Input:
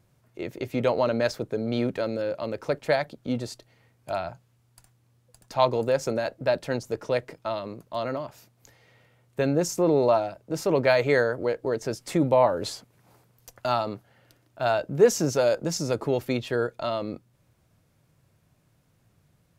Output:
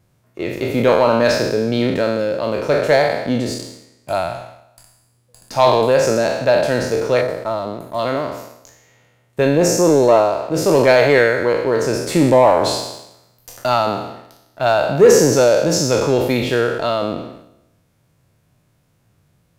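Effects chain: spectral trails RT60 1.04 s; 7.21–7.99 bell 2800 Hz -13 dB 1.2 oct; sample leveller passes 1; gain +4 dB

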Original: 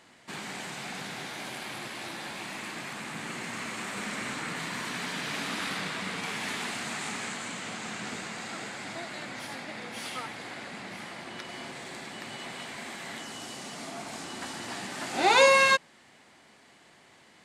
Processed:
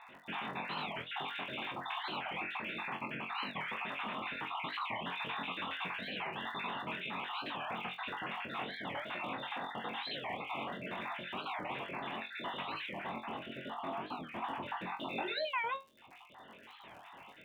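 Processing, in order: random spectral dropouts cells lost 46%; 12.93–15 high shelf 2200 Hz -10 dB; compressor 10:1, threshold -41 dBFS, peak gain reduction 23 dB; rippled Chebyshev low-pass 3700 Hz, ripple 9 dB; crackle 72/s -61 dBFS; flutter echo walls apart 3.8 m, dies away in 0.23 s; record warp 45 rpm, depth 250 cents; gain +9 dB

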